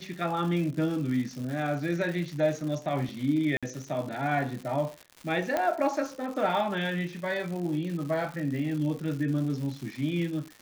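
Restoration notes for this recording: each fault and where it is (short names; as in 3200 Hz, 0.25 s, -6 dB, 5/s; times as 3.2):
crackle 240/s -36 dBFS
3.57–3.63 gap 56 ms
5.57 pop -14 dBFS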